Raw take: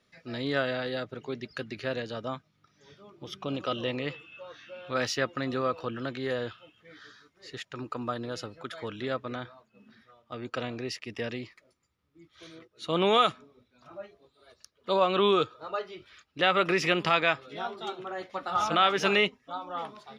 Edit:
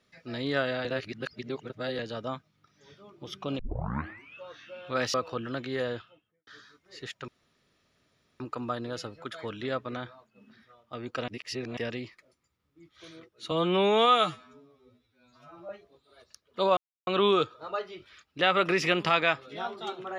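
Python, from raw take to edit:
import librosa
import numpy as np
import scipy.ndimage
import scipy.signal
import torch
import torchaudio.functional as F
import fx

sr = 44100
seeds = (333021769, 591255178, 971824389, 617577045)

y = fx.studio_fade_out(x, sr, start_s=6.37, length_s=0.61)
y = fx.edit(y, sr, fx.reverse_span(start_s=0.85, length_s=1.14),
    fx.tape_start(start_s=3.59, length_s=0.77),
    fx.cut(start_s=5.14, length_s=0.51),
    fx.insert_room_tone(at_s=7.79, length_s=1.12),
    fx.reverse_span(start_s=10.67, length_s=0.49),
    fx.stretch_span(start_s=12.9, length_s=1.09, factor=2.0),
    fx.insert_silence(at_s=15.07, length_s=0.3), tone=tone)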